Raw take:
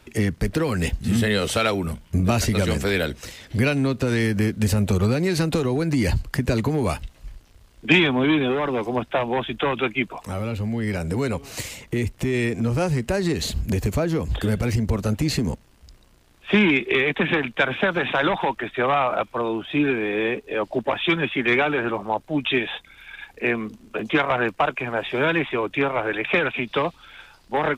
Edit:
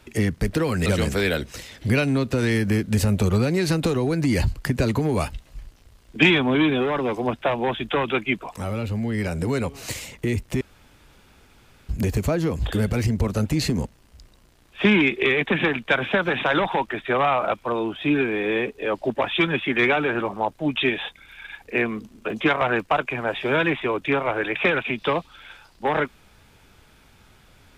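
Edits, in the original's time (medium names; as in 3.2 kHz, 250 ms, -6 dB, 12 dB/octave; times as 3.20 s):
0.86–2.55 s: delete
12.30–13.58 s: room tone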